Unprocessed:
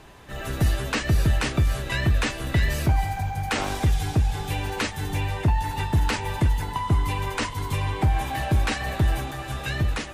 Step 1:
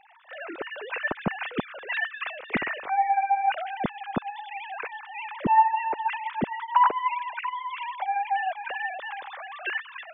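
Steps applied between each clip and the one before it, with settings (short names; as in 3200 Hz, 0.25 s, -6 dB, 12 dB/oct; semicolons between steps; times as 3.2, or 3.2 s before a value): sine-wave speech; gain -5 dB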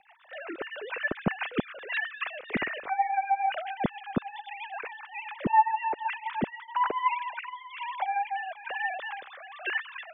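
rotary speaker horn 7.5 Hz, later 1.1 Hz, at 5.58; gain +1 dB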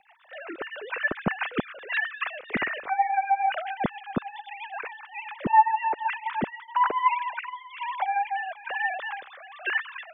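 dynamic EQ 1300 Hz, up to +5 dB, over -40 dBFS, Q 0.83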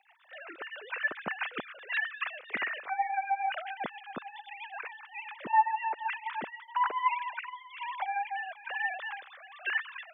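HPF 960 Hz 6 dB/oct; gain -3 dB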